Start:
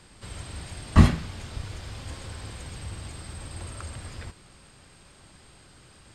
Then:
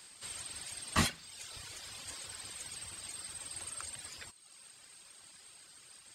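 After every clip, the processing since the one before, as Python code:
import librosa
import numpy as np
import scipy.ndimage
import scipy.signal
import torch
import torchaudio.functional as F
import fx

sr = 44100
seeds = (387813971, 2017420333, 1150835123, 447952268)

y = fx.tilt_eq(x, sr, slope=4.0)
y = fx.dereverb_blind(y, sr, rt60_s=0.93)
y = y * 10.0 ** (-6.0 / 20.0)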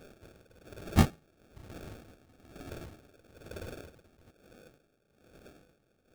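y = fx.low_shelf(x, sr, hz=350.0, db=12.0)
y = fx.sample_hold(y, sr, seeds[0], rate_hz=1000.0, jitter_pct=0)
y = y * 10.0 ** (-19 * (0.5 - 0.5 * np.cos(2.0 * np.pi * 1.1 * np.arange(len(y)) / sr)) / 20.0)
y = y * 10.0 ** (1.5 / 20.0)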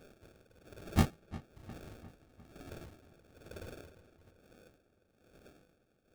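y = fx.echo_filtered(x, sr, ms=352, feedback_pct=57, hz=3400.0, wet_db=-17)
y = y * 10.0 ** (-4.5 / 20.0)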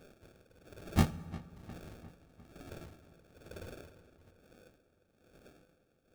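y = fx.rev_fdn(x, sr, rt60_s=1.8, lf_ratio=1.1, hf_ratio=0.6, size_ms=35.0, drr_db=15.0)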